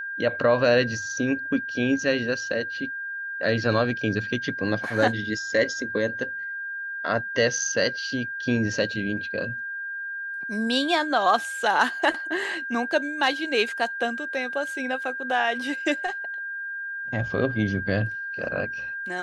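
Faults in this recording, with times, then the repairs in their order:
whistle 1,600 Hz −30 dBFS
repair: notch filter 1,600 Hz, Q 30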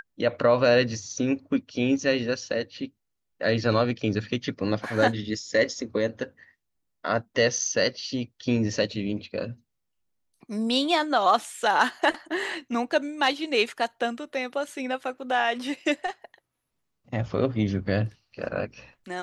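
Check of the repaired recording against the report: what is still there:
none of them is left

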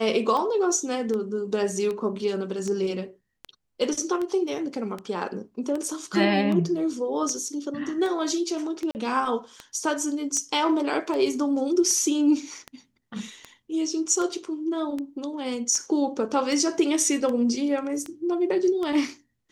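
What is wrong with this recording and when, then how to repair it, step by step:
scratch tick 78 rpm −19 dBFS
0:08.91–0:08.95: drop-out 39 ms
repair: click removal
repair the gap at 0:08.91, 39 ms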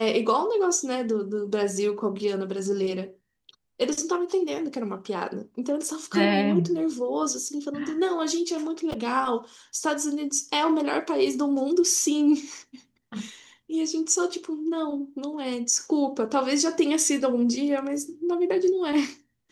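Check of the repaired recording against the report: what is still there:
none of them is left

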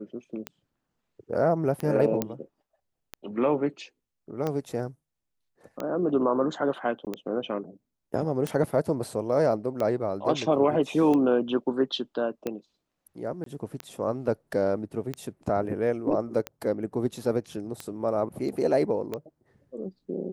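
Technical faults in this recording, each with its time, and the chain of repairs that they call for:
scratch tick 45 rpm −17 dBFS
0:02.22: click −12 dBFS
0:07.05–0:07.07: drop-out 18 ms
0:13.44–0:13.46: drop-out 23 ms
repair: click removal
repair the gap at 0:07.05, 18 ms
repair the gap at 0:13.44, 23 ms

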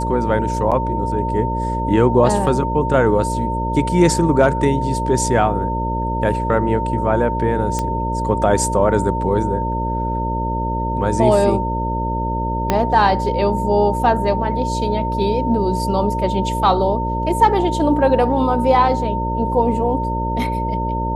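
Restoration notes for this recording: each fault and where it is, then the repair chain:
mains buzz 60 Hz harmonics 10 −23 dBFS
whistle 910 Hz −22 dBFS
0:00.71–0:00.72: drop-out 7 ms
0:07.79: click −8 dBFS
0:12.70: click −3 dBFS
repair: click removal
hum removal 60 Hz, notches 10
notch filter 910 Hz, Q 30
repair the gap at 0:00.71, 7 ms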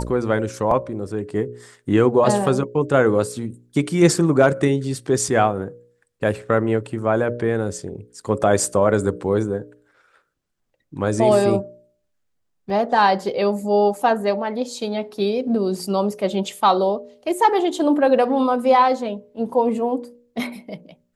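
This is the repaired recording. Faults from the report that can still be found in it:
0:12.70: click

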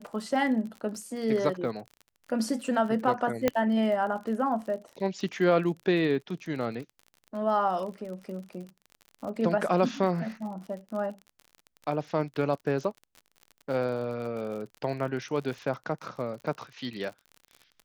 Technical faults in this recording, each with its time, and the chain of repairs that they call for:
surface crackle 45 per second −37 dBFS
0:03.48: click −10 dBFS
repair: click removal

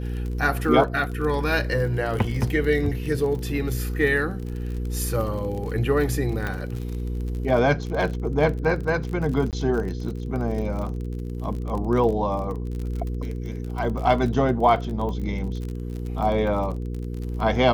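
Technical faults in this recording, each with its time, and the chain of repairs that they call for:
surface crackle 40 per second −30 dBFS
mains hum 60 Hz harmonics 8 −29 dBFS
0:06.47: click −15 dBFS
0:09.51–0:09.53: drop-out 18 ms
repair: click removal
hum removal 60 Hz, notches 8
repair the gap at 0:09.51, 18 ms

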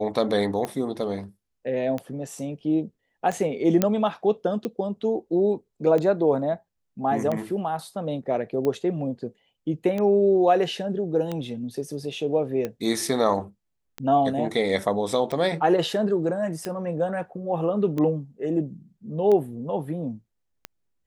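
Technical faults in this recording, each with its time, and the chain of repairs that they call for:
scratch tick 45 rpm −16 dBFS
0:03.82: click −6 dBFS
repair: click removal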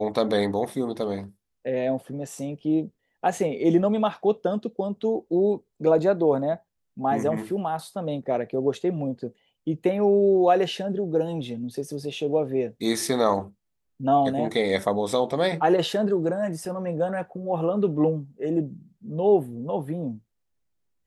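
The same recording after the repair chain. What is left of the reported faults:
none of them is left

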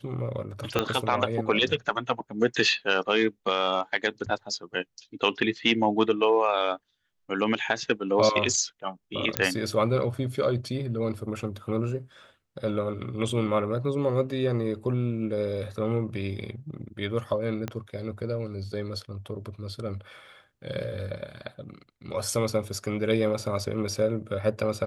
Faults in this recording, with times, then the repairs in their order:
0:00.79: click −9 dBFS
0:09.37: click −5 dBFS
0:17.68: click −17 dBFS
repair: click removal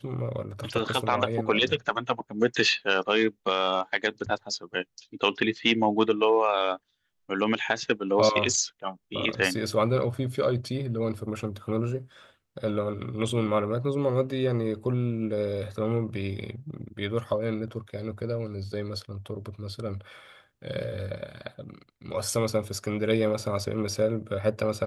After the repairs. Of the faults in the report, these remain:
0:00.79: click
0:17.68: click

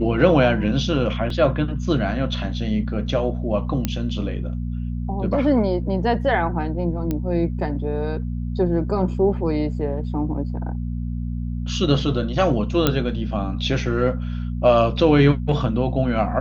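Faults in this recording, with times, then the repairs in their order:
mains hum 60 Hz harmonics 4 −26 dBFS
0:01.30: drop-out 2.8 ms
0:03.85: click −7 dBFS
0:07.11: click −12 dBFS
0:12.87: click −3 dBFS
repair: click removal
hum removal 60 Hz, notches 4
repair the gap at 0:01.30, 2.8 ms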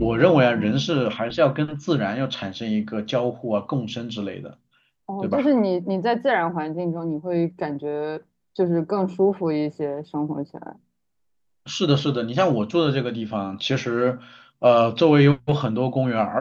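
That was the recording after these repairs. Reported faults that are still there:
none of them is left

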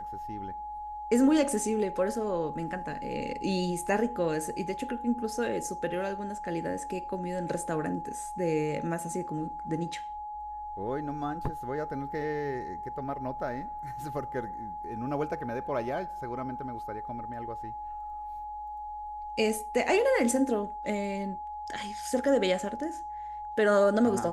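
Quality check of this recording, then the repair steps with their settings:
whistle 840 Hz −36 dBFS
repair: notch filter 840 Hz, Q 30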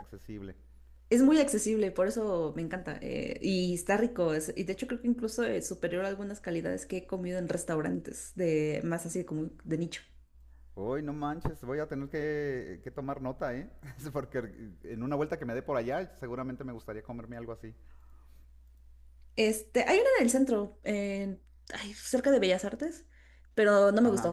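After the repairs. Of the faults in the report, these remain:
none of them is left

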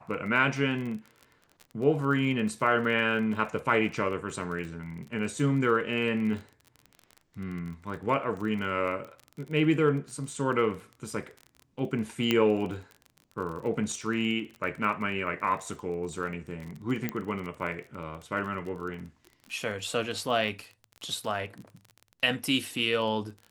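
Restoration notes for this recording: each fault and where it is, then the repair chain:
surface crackle 30 per second −36 dBFS
0:12.31: click −11 dBFS
0:17.09: click −16 dBFS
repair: click removal

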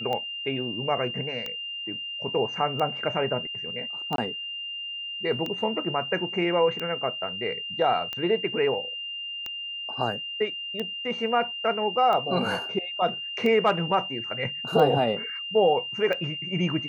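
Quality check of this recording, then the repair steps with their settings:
scratch tick 45 rpm −18 dBFS
whistle 2,800 Hz −32 dBFS
0:04.16–0:04.18: drop-out 22 ms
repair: click removal
notch filter 2,800 Hz, Q 30
repair the gap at 0:04.16, 22 ms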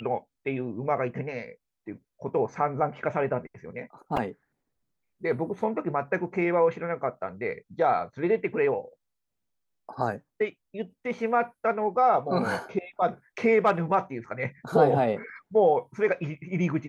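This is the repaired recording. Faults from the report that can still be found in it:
none of them is left

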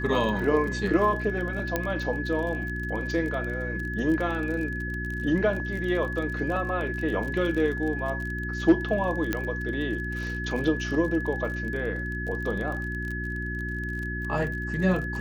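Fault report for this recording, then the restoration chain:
surface crackle 31 per second −32 dBFS
mains hum 60 Hz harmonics 6 −33 dBFS
whistle 1,700 Hz −33 dBFS
0:01.76: click −11 dBFS
0:09.33: click −12 dBFS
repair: click removal
notch filter 1,700 Hz, Q 30
hum removal 60 Hz, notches 6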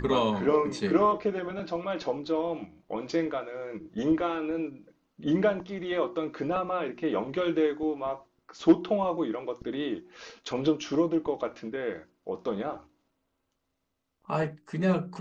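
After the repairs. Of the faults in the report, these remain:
none of them is left

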